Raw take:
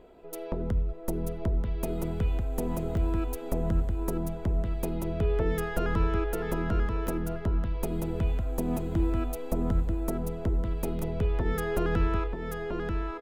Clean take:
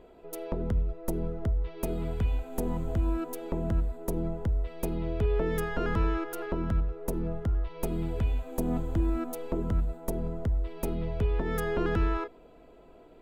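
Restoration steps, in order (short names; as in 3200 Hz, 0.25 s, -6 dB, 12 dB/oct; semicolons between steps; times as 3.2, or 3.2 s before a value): interpolate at 2.97/7.07/10.99, 1.4 ms; inverse comb 0.936 s -4.5 dB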